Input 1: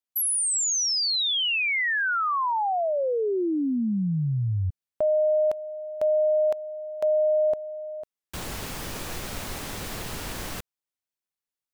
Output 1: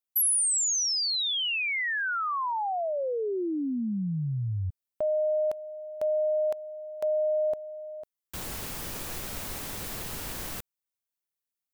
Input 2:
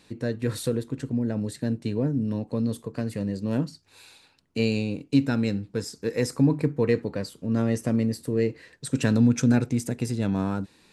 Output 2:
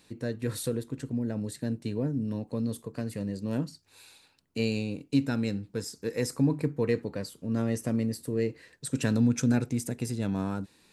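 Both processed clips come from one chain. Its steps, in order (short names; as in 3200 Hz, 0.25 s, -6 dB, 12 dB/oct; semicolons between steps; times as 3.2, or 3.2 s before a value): high shelf 9600 Hz +9.5 dB; gain -4.5 dB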